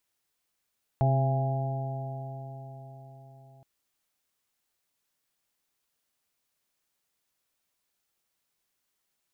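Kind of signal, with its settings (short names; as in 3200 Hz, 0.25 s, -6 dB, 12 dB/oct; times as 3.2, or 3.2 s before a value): stretched partials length 2.62 s, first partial 132 Hz, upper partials -15/-16/-20/-6/-10 dB, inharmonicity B 0.0018, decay 4.85 s, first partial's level -21 dB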